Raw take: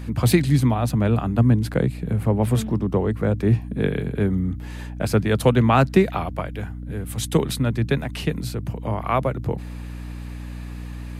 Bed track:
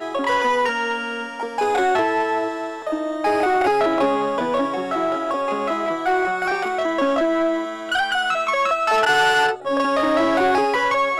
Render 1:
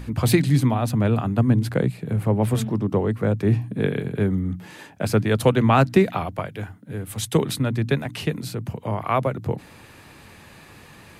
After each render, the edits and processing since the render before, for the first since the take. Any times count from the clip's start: de-hum 60 Hz, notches 5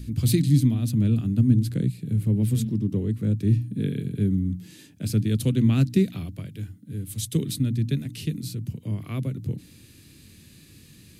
FFT filter 300 Hz 0 dB, 830 Hz -25 dB, 4 kHz +1 dB, 13 kHz +4 dB; harmonic-percussive split percussive -5 dB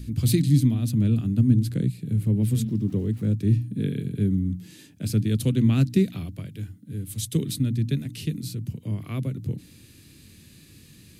2.69–3.35 s: small samples zeroed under -49 dBFS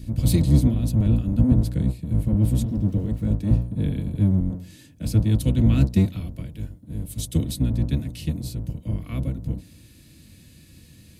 octave divider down 1 oct, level 0 dB; comb of notches 400 Hz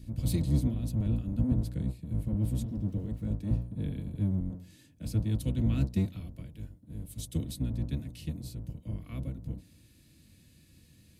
trim -10 dB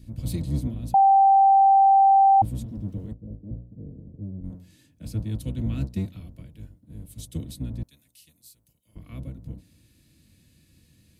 0.94–2.42 s: bleep 782 Hz -12.5 dBFS; 3.13–4.44 s: four-pole ladder low-pass 670 Hz, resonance 30%; 7.83–8.96 s: pre-emphasis filter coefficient 0.97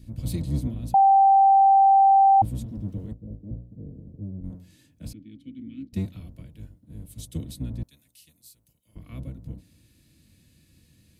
5.13–5.93 s: vowel filter i

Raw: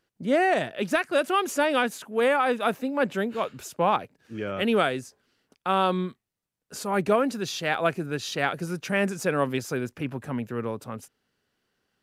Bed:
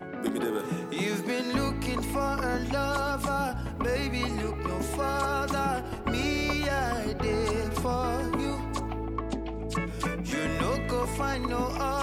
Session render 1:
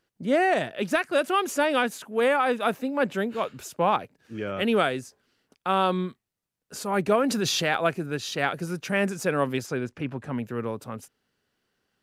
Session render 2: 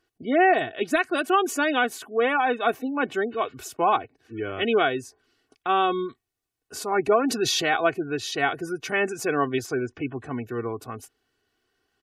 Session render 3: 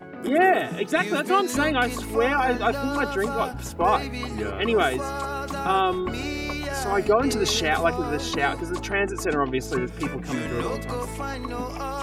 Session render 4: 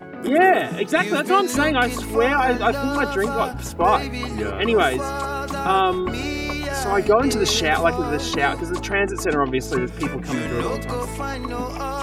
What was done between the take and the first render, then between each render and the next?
7.24–7.77 s: level flattener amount 70%; 9.66–10.33 s: distance through air 51 m
comb 2.7 ms, depth 72%; spectral gate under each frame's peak -30 dB strong
add bed -1.5 dB
trim +3.5 dB

